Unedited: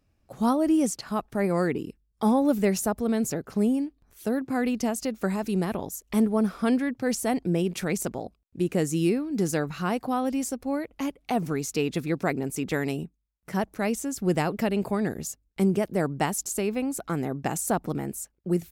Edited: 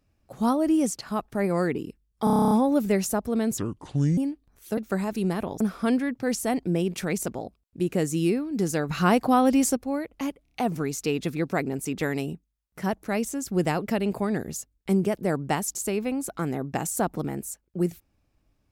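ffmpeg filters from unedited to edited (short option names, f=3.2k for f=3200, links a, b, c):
-filter_complex "[0:a]asplit=19[a][b][c][d][e][f][g][h][i][j][k][l][m][n][o][p][q][r][s];[a]atrim=end=2.272[t];[b]atrim=start=2.238:end=2.272[u];[c]atrim=start=2.238:end=2.272[v];[d]atrim=start=2.238:end=2.272[w];[e]atrim=start=2.238:end=2.272[x];[f]atrim=start=2.238:end=2.272[y];[g]atrim=start=2.238:end=2.272[z];[h]atrim=start=2.238:end=2.272[aa];[i]atrim=start=2.238:end=2.272[ab];[j]atrim=start=2.238:end=3.314[ac];[k]atrim=start=3.31:end=3.72,asetpts=PTS-STARTPTS,asetrate=30429,aresample=44100,atrim=end_sample=26204,asetpts=PTS-STARTPTS[ad];[l]atrim=start=3.716:end=4.322[ae];[m]atrim=start=5.088:end=5.922[af];[n]atrim=start=6.398:end=9.692[ag];[o]atrim=start=9.688:end=10.562,asetpts=PTS-STARTPTS,volume=7dB[ah];[p]atrim=start=10.558:end=11.252[ai];[q]atrim=start=11.218:end=11.252[aj];[r]atrim=start=11.218:end=11.252[ak];[s]atrim=start=11.218[al];[t][u]acrossfade=d=0.004:c1=hsin:c2=hsin[am];[am][v]acrossfade=d=0.004:c1=hsin:c2=hsin[an];[an][w]acrossfade=d=0.004:c1=hsin:c2=hsin[ao];[ao][x]acrossfade=d=0.004:c1=hsin:c2=hsin[ap];[ap][y]acrossfade=d=0.004:c1=hsin:c2=hsin[aq];[aq][z]acrossfade=d=0.004:c1=hsin:c2=hsin[ar];[ar][aa]acrossfade=d=0.004:c1=hsin:c2=hsin[as];[as][ab]acrossfade=d=0.004:c1=hsin:c2=hsin[at];[at][ac]acrossfade=d=0.004:c1=hsin:c2=hsin[au];[au][ad]acrossfade=d=0.004:c1=hsin:c2=hsin[av];[av][ae]acrossfade=d=0.004:c1=hsin:c2=hsin[aw];[aw][af]acrossfade=d=0.004:c1=hsin:c2=hsin[ax];[ax][ag]acrossfade=d=0.004:c1=hsin:c2=hsin[ay];[ay][ah]acrossfade=d=0.004:c1=hsin:c2=hsin[az];[az][ai]acrossfade=d=0.004:c1=hsin:c2=hsin[ba];[ba][aj]acrossfade=d=0.004:c1=hsin:c2=hsin[bb];[bb][ak]acrossfade=d=0.004:c1=hsin:c2=hsin[bc];[bc][al]acrossfade=d=0.004:c1=hsin:c2=hsin"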